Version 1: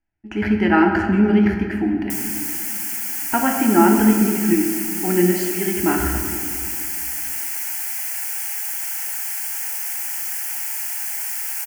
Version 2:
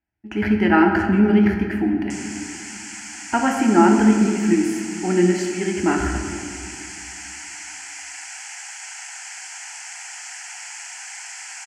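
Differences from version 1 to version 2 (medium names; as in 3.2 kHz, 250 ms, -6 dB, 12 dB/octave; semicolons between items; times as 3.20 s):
background: add elliptic low-pass 7.6 kHz, stop band 70 dB; master: add high-pass 50 Hz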